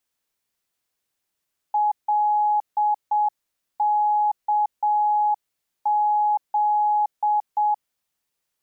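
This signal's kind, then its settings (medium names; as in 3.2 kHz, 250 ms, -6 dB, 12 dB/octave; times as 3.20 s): Morse "LKZ" 7 wpm 839 Hz -17 dBFS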